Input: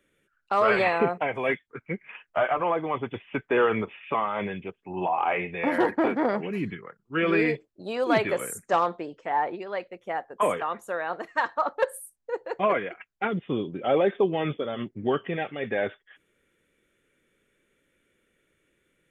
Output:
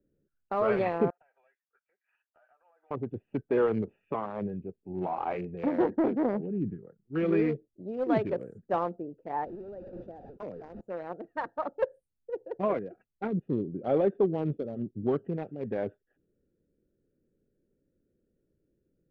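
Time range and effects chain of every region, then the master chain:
1.1–2.91 HPF 1100 Hz 24 dB/oct + compressor, threshold -42 dBFS
9.45–10.81 delta modulation 32 kbps, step -30 dBFS + gate with hold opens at -26 dBFS, closes at -33 dBFS + compressor 2:1, threshold -34 dBFS
whole clip: Wiener smoothing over 41 samples; LPF 7400 Hz 12 dB/oct; tilt shelf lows +8 dB; gain -7 dB

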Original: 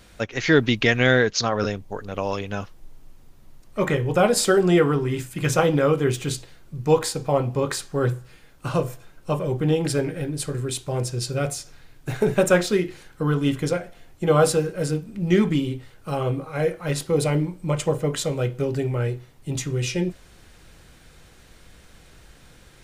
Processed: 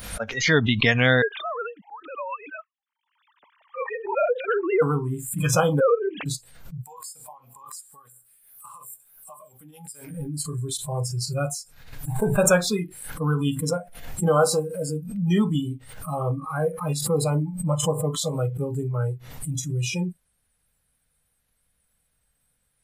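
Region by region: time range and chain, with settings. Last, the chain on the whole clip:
1.22–4.82 sine-wave speech + HPF 580 Hz 6 dB/oct
5.8–6.26 sine-wave speech + resonant low shelf 330 Hz -6.5 dB, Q 1.5
6.83–10.1 tilt +2.5 dB/oct + compressor 10:1, threshold -33 dBFS
14.28–14.96 HPF 40 Hz + bell 170 Hz -6.5 dB 0.44 oct
whole clip: spectral noise reduction 25 dB; bell 350 Hz -14 dB 0.34 oct; backwards sustainer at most 69 dB/s

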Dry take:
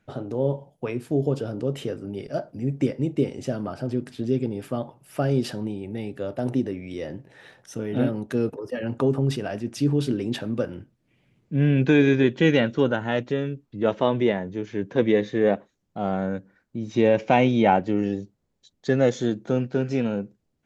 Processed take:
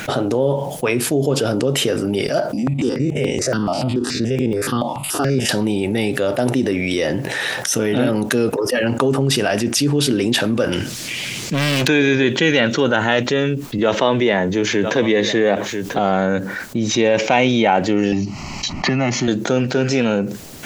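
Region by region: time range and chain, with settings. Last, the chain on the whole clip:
2.53–5.49 stepped spectrum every 50 ms + LPF 7800 Hz + step phaser 7 Hz 420–4500 Hz
10.72–11.88 bell 5600 Hz +14.5 dB 2.5 oct + hard clip -25.5 dBFS
13.78–15.99 echo 0.991 s -21.5 dB + three-band squash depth 40%
18.12–19.28 LPF 3300 Hz + fixed phaser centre 2400 Hz, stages 8 + three-band squash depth 100%
whole clip: tilt +2.5 dB/oct; fast leveller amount 70%; gain +3.5 dB

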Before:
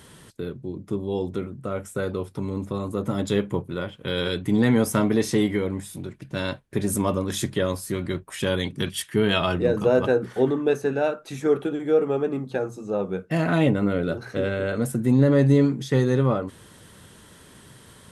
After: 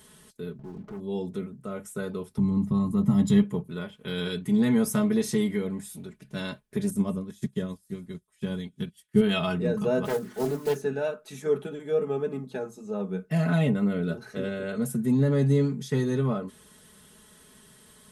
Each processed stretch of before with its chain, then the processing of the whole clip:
0.59–1 LPF 1500 Hz 24 dB/oct + sample leveller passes 3 + compressor, threshold -31 dBFS
2.38–3.43 low shelf 250 Hz +9.5 dB + comb 1 ms, depth 55% + mismatched tape noise reduction decoder only
6.9–9.21 low shelf 340 Hz +10 dB + thin delay 0.196 s, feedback 75%, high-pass 2900 Hz, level -19 dB + upward expander 2.5:1, over -30 dBFS
10.05–10.83 block floating point 5-bit + notches 50/100/150/200/250/300/350/400 Hz + Doppler distortion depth 0.38 ms
whole clip: high shelf 5800 Hz +7.5 dB; comb 4.7 ms, depth 74%; dynamic EQ 150 Hz, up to +8 dB, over -36 dBFS, Q 1.4; gain -9 dB

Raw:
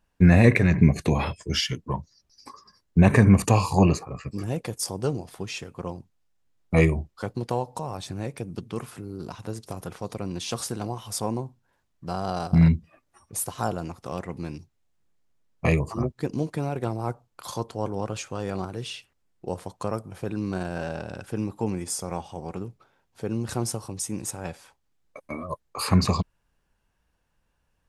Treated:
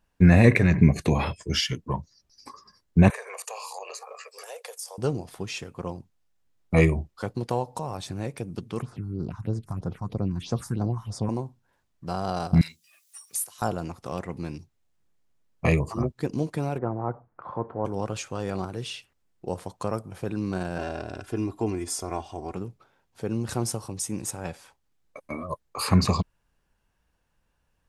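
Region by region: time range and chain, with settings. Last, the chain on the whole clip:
3.1–4.98 steep high-pass 450 Hz 72 dB/oct + high shelf 4200 Hz +7.5 dB + compressor 4:1, threshold -36 dBFS
8.82–11.29 tone controls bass +7 dB, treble -10 dB + phaser stages 4, 3.1 Hz, lowest notch 440–2900 Hz
12.61–13.62 differentiator + three-band squash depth 70%
16.78–17.85 G.711 law mismatch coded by mu + LPF 1500 Hz 24 dB/oct + low shelf 69 Hz -10.5 dB
20.78–22.54 high shelf 8500 Hz -5 dB + comb 2.9 ms, depth 63%
whole clip: dry

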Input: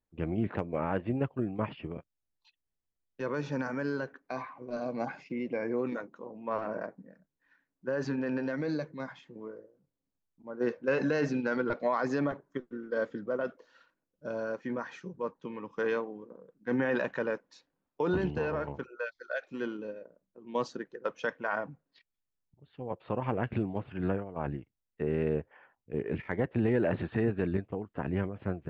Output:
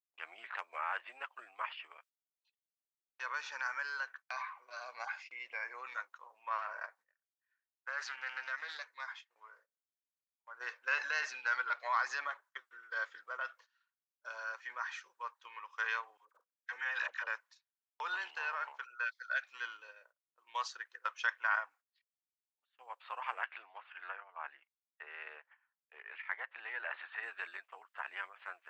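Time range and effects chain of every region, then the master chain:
6.98–10.55 bell 280 Hz -6.5 dB 1.4 oct + Doppler distortion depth 0.19 ms
16.17–17.27 high shelf 2600 Hz +6 dB + level quantiser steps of 17 dB + dispersion lows, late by 60 ms, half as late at 690 Hz
23.44–27.23 HPF 460 Hz 6 dB/oct + air absorption 230 m
whole clip: gate -52 dBFS, range -20 dB; HPF 1100 Hz 24 dB/oct; gain +3.5 dB

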